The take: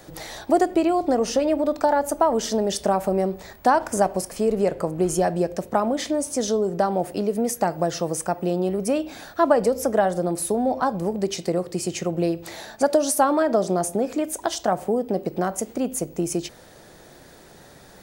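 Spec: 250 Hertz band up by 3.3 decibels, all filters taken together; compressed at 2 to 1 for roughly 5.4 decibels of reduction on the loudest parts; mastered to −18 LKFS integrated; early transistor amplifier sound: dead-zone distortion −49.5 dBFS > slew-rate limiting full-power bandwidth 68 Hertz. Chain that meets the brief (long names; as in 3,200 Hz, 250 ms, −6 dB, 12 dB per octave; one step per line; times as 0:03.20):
parametric band 250 Hz +4.5 dB
downward compressor 2 to 1, threshold −22 dBFS
dead-zone distortion −49.5 dBFS
slew-rate limiting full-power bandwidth 68 Hz
level +8.5 dB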